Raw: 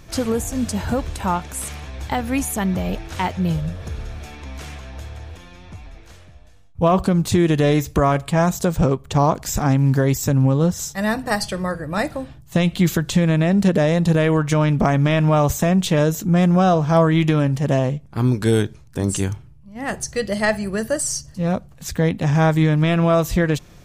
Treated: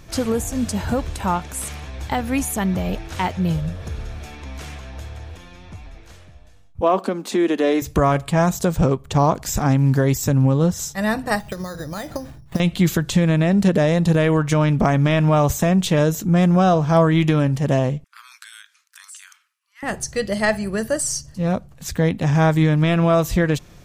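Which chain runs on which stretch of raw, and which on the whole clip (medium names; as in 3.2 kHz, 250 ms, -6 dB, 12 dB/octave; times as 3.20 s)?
6.81–7.82 s: steep high-pass 220 Hz 48 dB/octave + treble shelf 4.4 kHz -7.5 dB
11.39–12.60 s: compression 5:1, threshold -28 dBFS + transient shaper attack +11 dB, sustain +3 dB + careless resampling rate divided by 8×, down filtered, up hold
18.04–19.83 s: steep high-pass 1.2 kHz 48 dB/octave + compression 4:1, threshold -39 dBFS
whole clip: none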